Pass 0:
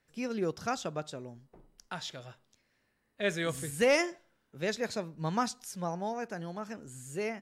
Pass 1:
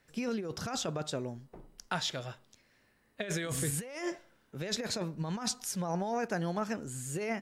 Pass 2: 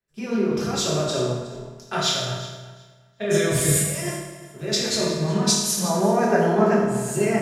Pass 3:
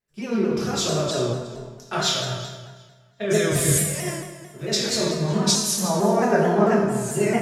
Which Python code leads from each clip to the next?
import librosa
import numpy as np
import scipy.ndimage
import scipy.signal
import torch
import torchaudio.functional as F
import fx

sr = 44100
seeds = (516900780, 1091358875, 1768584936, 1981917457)

y1 = fx.over_compress(x, sr, threshold_db=-37.0, ratio=-1.0)
y1 = y1 * 10.0 ** (2.5 / 20.0)
y2 = fx.echo_feedback(y1, sr, ms=368, feedback_pct=37, wet_db=-12)
y2 = fx.rev_fdn(y2, sr, rt60_s=1.6, lf_ratio=1.0, hf_ratio=0.85, size_ms=15.0, drr_db=-6.0)
y2 = fx.band_widen(y2, sr, depth_pct=70)
y2 = y2 * 10.0 ** (5.5 / 20.0)
y3 = fx.vibrato_shape(y2, sr, shape='saw_down', rate_hz=4.5, depth_cents=100.0)